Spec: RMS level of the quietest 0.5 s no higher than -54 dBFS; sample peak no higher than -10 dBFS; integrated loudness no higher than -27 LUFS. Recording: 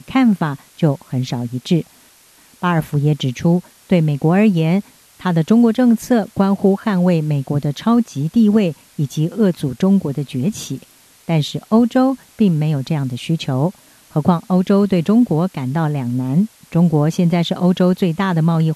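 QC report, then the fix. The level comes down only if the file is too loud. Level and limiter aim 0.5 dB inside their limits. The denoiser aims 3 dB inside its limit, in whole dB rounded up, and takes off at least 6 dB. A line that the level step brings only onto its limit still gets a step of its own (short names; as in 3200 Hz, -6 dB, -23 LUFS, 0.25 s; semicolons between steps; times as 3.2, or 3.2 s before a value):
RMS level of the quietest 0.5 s -49 dBFS: fail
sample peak -2.5 dBFS: fail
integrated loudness -17.0 LUFS: fail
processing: gain -10.5 dB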